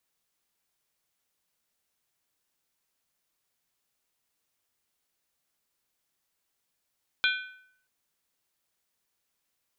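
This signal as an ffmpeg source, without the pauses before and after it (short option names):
-f lavfi -i "aevalsrc='0.075*pow(10,-3*t/0.67)*sin(2*PI*1510*t)+0.0596*pow(10,-3*t/0.531)*sin(2*PI*2406.9*t)+0.0473*pow(10,-3*t/0.458)*sin(2*PI*3225.4*t)+0.0376*pow(10,-3*t/0.442)*sin(2*PI*3467*t)+0.0299*pow(10,-3*t/0.411)*sin(2*PI*4006*t)':d=0.63:s=44100"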